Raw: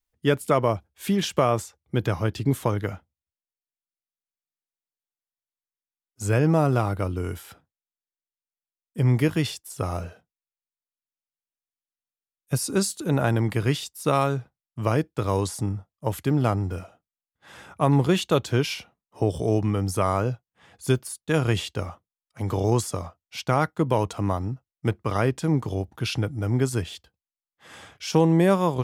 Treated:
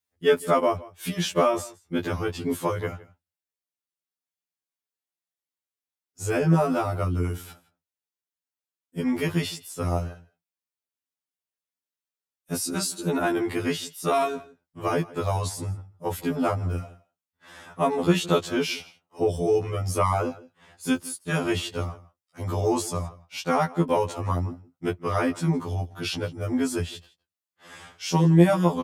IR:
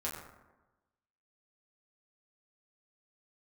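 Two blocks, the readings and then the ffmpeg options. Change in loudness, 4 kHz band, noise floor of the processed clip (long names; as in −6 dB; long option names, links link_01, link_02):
−1.0 dB, 0.0 dB, below −85 dBFS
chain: -filter_complex "[0:a]highpass=79,asplit=2[link_01][link_02];[link_02]adelay=163.3,volume=-20dB,highshelf=frequency=4000:gain=-3.67[link_03];[link_01][link_03]amix=inputs=2:normalize=0,afftfilt=real='re*2*eq(mod(b,4),0)':imag='im*2*eq(mod(b,4),0)':win_size=2048:overlap=0.75,volume=2.5dB"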